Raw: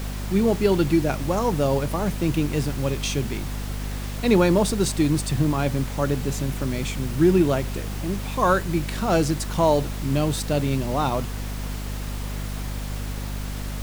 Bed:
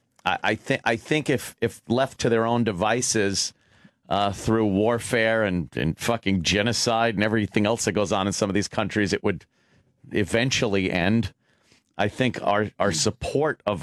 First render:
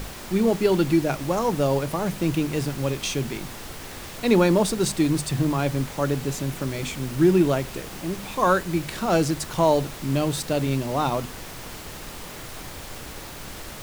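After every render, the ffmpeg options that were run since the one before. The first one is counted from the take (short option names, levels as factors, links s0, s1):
-af "bandreject=f=50:t=h:w=6,bandreject=f=100:t=h:w=6,bandreject=f=150:t=h:w=6,bandreject=f=200:t=h:w=6,bandreject=f=250:t=h:w=6"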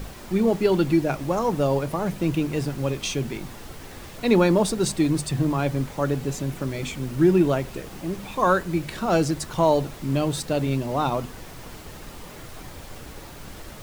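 -af "afftdn=nr=6:nf=-38"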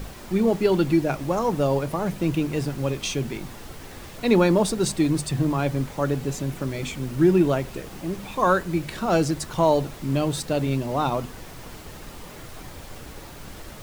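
-af anull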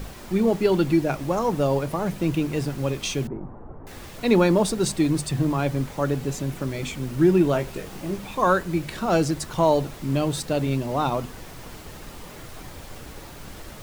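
-filter_complex "[0:a]asettb=1/sr,asplit=3[s0][s1][s2];[s0]atrim=end=3.274[s3];[s1]atrim=start=3.27:end=3.87,asetpts=PTS-STARTPTS,afade=t=in:d=0.004:c=qsin,afade=t=out:st=0.596:d=0.004:c=qsin,lowpass=f=1100:w=0.5412,lowpass=f=1100:w=1.3066[s4];[s2]atrim=start=3.866[s5];[s3][s4]acrossfade=d=0.004:c1=hsin:c2=qsin[s6];[s6][s5]acrossfade=d=0.004:c1=qsin:c2=hsin,asettb=1/sr,asplit=3[s7][s8][s9];[s7]atrim=end=7.524[s10];[s8]atrim=start=7.52:end=8.18,asetpts=PTS-STARTPTS,afade=t=in:d=0.004:c=qsin,afade=t=out:st=0.656:d=0.004:c=qsin,asplit=2[s11][s12];[s12]adelay=20,volume=0.501[s13];[s11][s13]amix=inputs=2:normalize=0,atrim=end_sample=29106[s14];[s9]atrim=start=8.176[s15];[s10][s14]acrossfade=d=0.004:c1=hsin:c2=qsin[s16];[s16][s15]acrossfade=d=0.004:c1=qsin:c2=hsin"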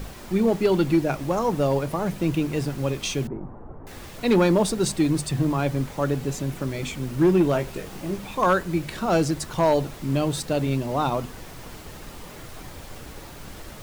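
-af "asoftclip=type=hard:threshold=0.237"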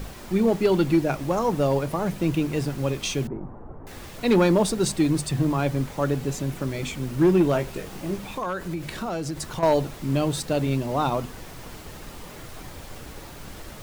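-filter_complex "[0:a]asettb=1/sr,asplit=3[s0][s1][s2];[s0]atrim=end=8.304[s3];[s1]atrim=start=8.3:end=9.63,asetpts=PTS-STARTPTS,afade=t=in:d=0.004:c=qsin,afade=t=out:st=1.326:d=0.004:c=qsin,acompressor=threshold=0.0501:ratio=5:attack=3.2:release=140:knee=1:detection=peak[s4];[s2]atrim=start=9.626[s5];[s3][s4]acrossfade=d=0.004:c1=hsin:c2=qsin[s6];[s6][s5]acrossfade=d=0.004:c1=qsin:c2=hsin"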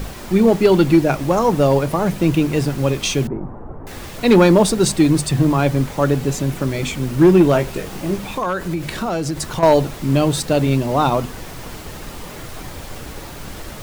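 -af "volume=2.37"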